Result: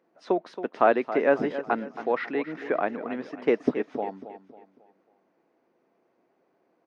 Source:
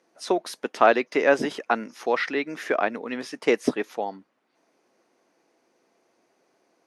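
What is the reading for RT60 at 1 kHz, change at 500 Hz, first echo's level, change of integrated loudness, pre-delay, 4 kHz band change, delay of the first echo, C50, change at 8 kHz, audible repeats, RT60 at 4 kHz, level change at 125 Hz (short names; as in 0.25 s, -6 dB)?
none, -1.5 dB, -12.5 dB, -2.0 dB, none, -12.0 dB, 0.273 s, none, under -20 dB, 3, none, +1.0 dB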